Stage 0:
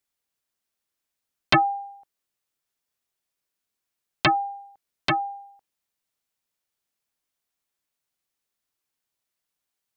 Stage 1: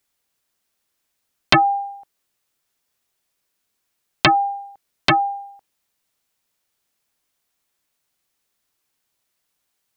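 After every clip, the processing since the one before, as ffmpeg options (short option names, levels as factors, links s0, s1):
-af "acompressor=threshold=0.0891:ratio=3,volume=2.82"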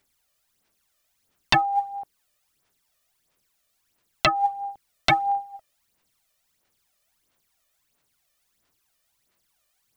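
-af "aphaser=in_gain=1:out_gain=1:delay=1.7:decay=0.65:speed=1.5:type=sinusoidal,alimiter=limit=0.447:level=0:latency=1:release=492"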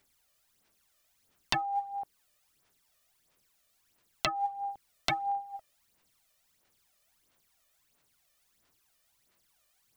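-af "acompressor=threshold=0.0224:ratio=2.5"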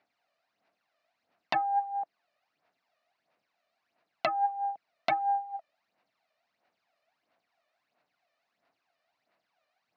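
-af "aeval=exprs='0.335*(cos(1*acos(clip(val(0)/0.335,-1,1)))-cos(1*PI/2))+0.0266*(cos(4*acos(clip(val(0)/0.335,-1,1)))-cos(4*PI/2))':c=same,highpass=230,equalizer=f=390:t=q:w=4:g=-6,equalizer=f=690:t=q:w=4:g=10,equalizer=f=3300:t=q:w=4:g=-9,lowpass=f=3900:w=0.5412,lowpass=f=3900:w=1.3066"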